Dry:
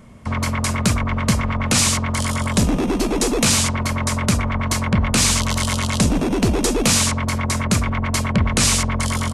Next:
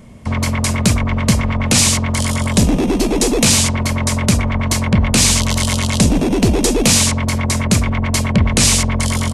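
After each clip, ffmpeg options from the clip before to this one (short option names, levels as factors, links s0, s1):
-af "equalizer=f=1300:w=1.7:g=-6.5,volume=1.68"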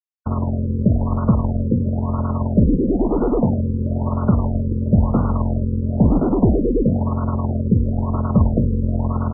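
-af "aeval=exprs='sgn(val(0))*max(abs(val(0))-0.0422,0)':c=same,afftfilt=real='re*lt(b*sr/1024,530*pow(1500/530,0.5+0.5*sin(2*PI*1*pts/sr)))':imag='im*lt(b*sr/1024,530*pow(1500/530,0.5+0.5*sin(2*PI*1*pts/sr)))':win_size=1024:overlap=0.75"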